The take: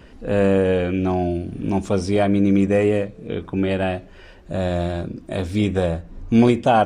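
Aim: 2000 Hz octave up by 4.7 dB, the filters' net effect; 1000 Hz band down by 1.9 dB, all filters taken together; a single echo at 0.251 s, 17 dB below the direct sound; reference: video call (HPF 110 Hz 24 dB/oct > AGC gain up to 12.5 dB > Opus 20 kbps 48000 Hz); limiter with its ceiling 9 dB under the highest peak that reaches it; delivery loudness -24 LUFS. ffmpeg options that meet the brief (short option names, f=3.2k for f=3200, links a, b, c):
-af "equalizer=f=1k:t=o:g=-4.5,equalizer=f=2k:t=o:g=7.5,alimiter=limit=-12dB:level=0:latency=1,highpass=f=110:w=0.5412,highpass=f=110:w=1.3066,aecho=1:1:251:0.141,dynaudnorm=m=12.5dB" -ar 48000 -c:a libopus -b:a 20k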